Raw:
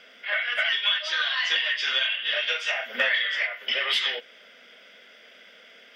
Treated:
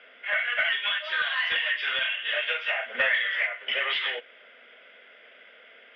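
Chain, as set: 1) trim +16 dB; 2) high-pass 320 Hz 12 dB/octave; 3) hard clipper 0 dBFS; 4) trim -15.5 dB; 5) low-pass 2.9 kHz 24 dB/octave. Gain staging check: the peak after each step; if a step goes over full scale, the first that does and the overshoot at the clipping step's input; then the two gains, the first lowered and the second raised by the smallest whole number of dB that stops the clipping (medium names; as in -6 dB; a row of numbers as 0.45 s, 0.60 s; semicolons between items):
+4.5 dBFS, +4.5 dBFS, 0.0 dBFS, -15.5 dBFS, -14.0 dBFS; step 1, 4.5 dB; step 1 +11 dB, step 4 -10.5 dB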